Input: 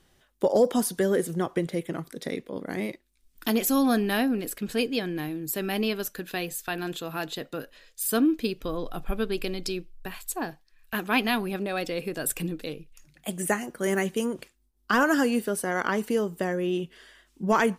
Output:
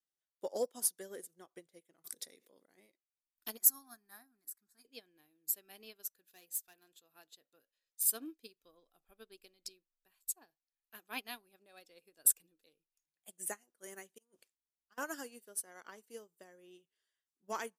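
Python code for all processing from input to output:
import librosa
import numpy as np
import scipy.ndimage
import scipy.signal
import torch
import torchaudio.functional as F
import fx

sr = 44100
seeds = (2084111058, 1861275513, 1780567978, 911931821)

y = fx.chain(x, sr, fx.highpass(hz=130.0, slope=12),
    fx.high_shelf(hz=5000.0, db=7.5),
    fx.env_flatten(amount_pct=70), at=(2.04, 2.66))
y = fx.chain(y, sr, fx.low_shelf(hz=210.0, db=-6.0),
    fx.fixed_phaser(hz=1200.0, stages=4), at=(3.57, 4.85))
y = fx.chain(y, sr, fx.high_shelf(hz=8800.0, db=5.0),
    fx.clip_hard(threshold_db=-26.0), at=(6.24, 6.88))
y = fx.chain(y, sr, fx.auto_swell(attack_ms=152.0),
    fx.over_compress(threshold_db=-34.0, ratio=-0.5), at=(14.18, 14.98))
y = fx.bass_treble(y, sr, bass_db=-12, treble_db=11)
y = fx.upward_expand(y, sr, threshold_db=-35.0, expansion=2.5)
y = y * 10.0 ** (-6.5 / 20.0)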